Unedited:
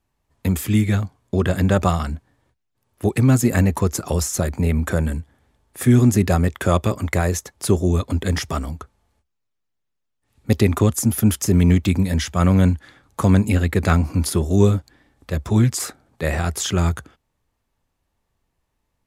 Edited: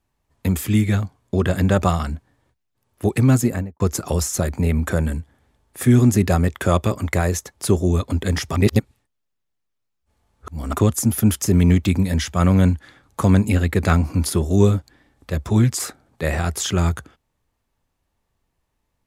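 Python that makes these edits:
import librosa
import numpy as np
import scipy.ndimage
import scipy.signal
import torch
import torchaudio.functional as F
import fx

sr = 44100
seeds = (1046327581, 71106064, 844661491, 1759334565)

y = fx.studio_fade_out(x, sr, start_s=3.34, length_s=0.46)
y = fx.edit(y, sr, fx.reverse_span(start_s=8.56, length_s=2.17), tone=tone)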